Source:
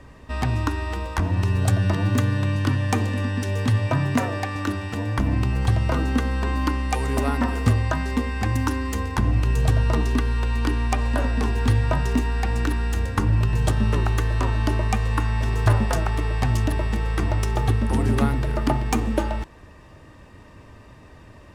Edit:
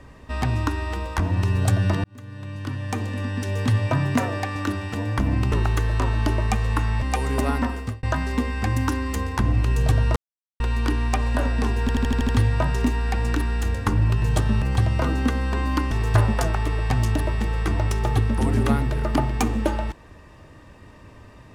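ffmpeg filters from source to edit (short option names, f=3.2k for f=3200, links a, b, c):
-filter_complex "[0:a]asplit=15[a][b][c][d][e][f][g][h][i][j][k][l][m][n][o];[a]atrim=end=2.04,asetpts=PTS-STARTPTS,afade=t=out:st=2.036:d=0.004:c=hsin[p];[b]atrim=start=2.04:end=5.522,asetpts=PTS-STARTPTS,afade=t=in:d=1.66[q];[c]atrim=start=13.928:end=15.432[r];[d]atrim=start=6.808:end=7.82,asetpts=PTS-STARTPTS,afade=t=out:st=0.552:d=0.46[s];[e]atrim=start=7.82:end=9.95,asetpts=PTS-STARTPTS,afade=t=in:d=0.004:c=hsin,afade=t=out:st=2.126:d=0.004:c=hsin[t];[f]atrim=start=9.95:end=10.39,asetpts=PTS-STARTPTS,volume=0[u];[g]atrim=start=10.39:end=11.682,asetpts=PTS-STARTPTS,afade=t=in:d=0.004:c=hsin[v];[h]atrim=start=11.598:end=11.682[w];[i]atrim=start=11.598:end=11.682[x];[j]atrim=start=11.598:end=11.682[y];[k]atrim=start=11.598:end=11.682[z];[l]atrim=start=11.598:end=11.682[aa];[m]atrim=start=11.598:end=13.932[ab];[n]atrim=start=5.518:end=6.812[ac];[o]atrim=start=15.428[ad];[p][q]concat=n=2:v=0:a=1[ae];[ae][r]acrossfade=d=0.004:c1=hsin:c2=hsin[af];[s][t][u][v]concat=n=4:v=0:a=1[ag];[af][ag]acrossfade=d=0.004:c1=hsin:c2=hsin[ah];[ah][w]acrossfade=d=0.004:c1=hsin:c2=hsin[ai];[ai][x]acrossfade=d=0.004:c1=hsin:c2=hsin[aj];[aj][y]acrossfade=d=0.004:c1=hsin:c2=hsin[ak];[ak][z]acrossfade=d=0.004:c1=hsin:c2=hsin[al];[al][aa]acrossfade=d=0.004:c1=hsin:c2=hsin[am];[am][ab]acrossfade=d=0.004:c1=hsin:c2=hsin[an];[an][ac]acrossfade=d=0.004:c1=hsin:c2=hsin[ao];[ao][ad]acrossfade=d=0.004:c1=hsin:c2=hsin"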